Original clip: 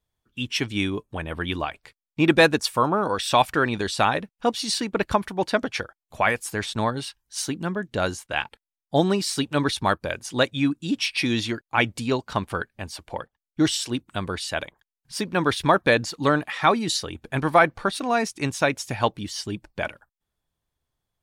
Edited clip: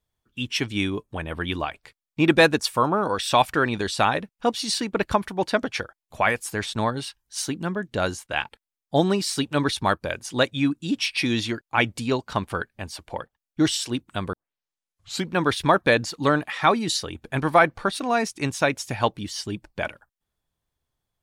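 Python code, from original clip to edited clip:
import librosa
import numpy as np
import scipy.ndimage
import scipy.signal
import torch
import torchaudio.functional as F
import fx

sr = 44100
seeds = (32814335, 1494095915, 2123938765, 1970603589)

y = fx.edit(x, sr, fx.tape_start(start_s=14.33, length_s=1.0), tone=tone)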